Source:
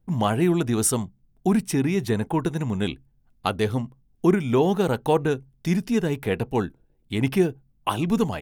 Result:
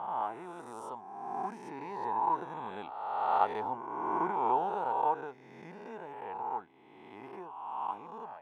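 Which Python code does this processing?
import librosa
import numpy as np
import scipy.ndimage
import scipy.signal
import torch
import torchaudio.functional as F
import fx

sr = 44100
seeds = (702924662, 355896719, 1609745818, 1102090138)

y = fx.spec_swells(x, sr, rise_s=1.64)
y = fx.doppler_pass(y, sr, speed_mps=6, closest_m=7.3, pass_at_s=3.43)
y = fx.bandpass_q(y, sr, hz=880.0, q=5.1)
y = F.gain(torch.from_numpy(y), 2.0).numpy()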